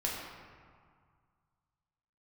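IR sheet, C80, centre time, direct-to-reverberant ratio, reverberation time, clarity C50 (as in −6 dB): 2.5 dB, 91 ms, −4.5 dB, 2.0 s, 0.5 dB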